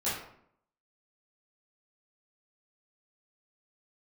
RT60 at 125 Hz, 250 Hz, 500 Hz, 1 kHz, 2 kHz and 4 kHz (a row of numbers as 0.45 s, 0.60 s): 0.75 s, 0.80 s, 0.70 s, 0.65 s, 0.55 s, 0.40 s